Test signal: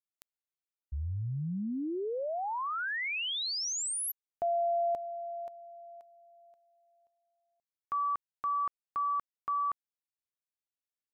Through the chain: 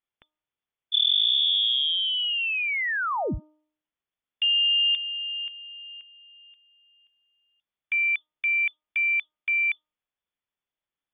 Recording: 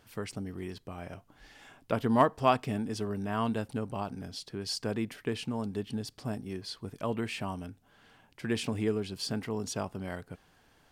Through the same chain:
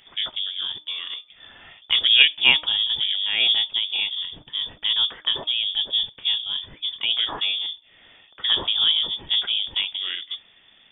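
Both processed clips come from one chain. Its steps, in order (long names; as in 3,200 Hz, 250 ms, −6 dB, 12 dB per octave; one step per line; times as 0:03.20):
sub-octave generator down 1 octave, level +1 dB
voice inversion scrambler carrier 3,500 Hz
hum removal 306.5 Hz, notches 4
level +7.5 dB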